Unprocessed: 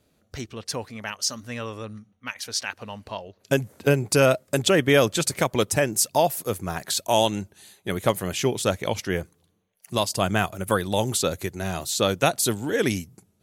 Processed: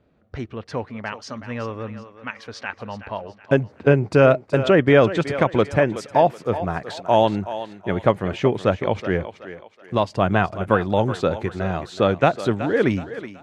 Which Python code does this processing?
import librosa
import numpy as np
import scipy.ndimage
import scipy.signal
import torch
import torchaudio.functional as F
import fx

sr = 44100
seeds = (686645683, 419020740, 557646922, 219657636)

y = scipy.signal.sosfilt(scipy.signal.butter(2, 1900.0, 'lowpass', fs=sr, output='sos'), x)
y = fx.echo_thinned(y, sr, ms=374, feedback_pct=38, hz=350.0, wet_db=-11.5)
y = y * 10.0 ** (4.5 / 20.0)